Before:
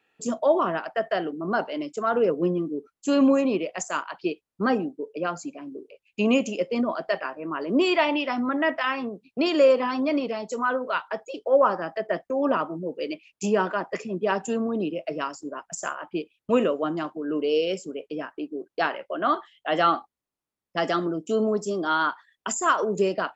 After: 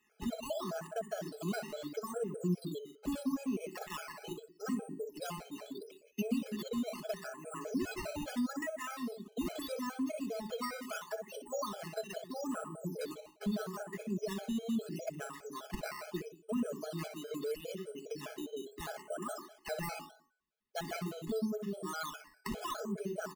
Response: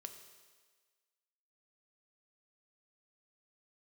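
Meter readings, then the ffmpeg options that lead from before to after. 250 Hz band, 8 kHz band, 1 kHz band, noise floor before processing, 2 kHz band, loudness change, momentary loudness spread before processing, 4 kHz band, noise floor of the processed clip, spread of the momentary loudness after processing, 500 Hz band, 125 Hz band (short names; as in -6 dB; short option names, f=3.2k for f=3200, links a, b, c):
-11.5 dB, n/a, -17.5 dB, under -85 dBFS, -16.0 dB, -14.0 dB, 12 LU, -12.5 dB, -66 dBFS, 8 LU, -16.0 dB, -5.5 dB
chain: -filter_complex "[0:a]bandreject=f=372.6:t=h:w=4,bandreject=f=745.2:t=h:w=4,bandreject=f=1.1178k:t=h:w=4,bandreject=f=1.4904k:t=h:w=4,bandreject=f=1.863k:t=h:w=4,bandreject=f=2.2356k:t=h:w=4,bandreject=f=2.6082k:t=h:w=4,bandreject=f=2.9808k:t=h:w=4,bandreject=f=3.3534k:t=h:w=4,bandreject=f=3.726k:t=h:w=4,bandreject=f=4.0986k:t=h:w=4,bandreject=f=4.4712k:t=h:w=4,bandreject=f=4.8438k:t=h:w=4,bandreject=f=5.2164k:t=h:w=4,bandreject=f=5.589k:t=h:w=4,bandreject=f=5.9616k:t=h:w=4,bandreject=f=6.3342k:t=h:w=4,bandreject=f=6.7068k:t=h:w=4,bandreject=f=7.0794k:t=h:w=4,bandreject=f=7.452k:t=h:w=4,bandreject=f=7.8246k:t=h:w=4,bandreject=f=8.1972k:t=h:w=4,bandreject=f=8.5698k:t=h:w=4,bandreject=f=8.9424k:t=h:w=4,bandreject=f=9.315k:t=h:w=4,bandreject=f=9.6876k:t=h:w=4,bandreject=f=10.0602k:t=h:w=4,bandreject=f=10.4328k:t=h:w=4,bandreject=f=10.8054k:t=h:w=4,bandreject=f=11.178k:t=h:w=4,bandreject=f=11.5506k:t=h:w=4,bandreject=f=11.9232k:t=h:w=4,bandreject=f=12.2958k:t=h:w=4,bandreject=f=12.6684k:t=h:w=4,bandreject=f=13.041k:t=h:w=4,bandreject=f=13.4136k:t=h:w=4,bandreject=f=13.7862k:t=h:w=4,asplit=2[a][b];[b]adelay=61,lowpass=f=1.4k:p=1,volume=-5dB,asplit=2[c][d];[d]adelay=61,lowpass=f=1.4k:p=1,volume=0.37,asplit=2[e][f];[f]adelay=61,lowpass=f=1.4k:p=1,volume=0.37,asplit=2[g][h];[h]adelay=61,lowpass=f=1.4k:p=1,volume=0.37,asplit=2[i][j];[j]adelay=61,lowpass=f=1.4k:p=1,volume=0.37[k];[c][e][g][i][k]amix=inputs=5:normalize=0[l];[a][l]amix=inputs=2:normalize=0,acrusher=samples=9:mix=1:aa=0.000001:lfo=1:lforange=9:lforate=0.77,aecho=1:1:4.7:0.59,acrossover=split=160[m][n];[n]acompressor=threshold=-35dB:ratio=4[o];[m][o]amix=inputs=2:normalize=0,bandreject=f=910:w=26,afftfilt=real='re*gt(sin(2*PI*4.9*pts/sr)*(1-2*mod(floor(b*sr/1024/430),2)),0)':imag='im*gt(sin(2*PI*4.9*pts/sr)*(1-2*mod(floor(b*sr/1024/430),2)),0)':win_size=1024:overlap=0.75,volume=-2dB"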